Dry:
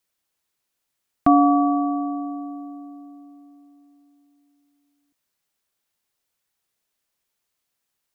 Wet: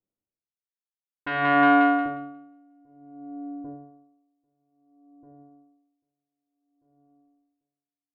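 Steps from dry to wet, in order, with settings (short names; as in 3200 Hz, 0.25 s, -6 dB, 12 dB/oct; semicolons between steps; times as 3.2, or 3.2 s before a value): self-modulated delay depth 0.41 ms; low shelf 210 Hz -9 dB; low-pass opened by the level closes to 310 Hz, open at -22 dBFS; split-band echo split 500 Hz, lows 0.793 s, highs 0.179 s, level -9 dB; reverb RT60 0.60 s, pre-delay 9 ms, DRR 6.5 dB; dB-linear tremolo 0.56 Hz, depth 31 dB; gain +6.5 dB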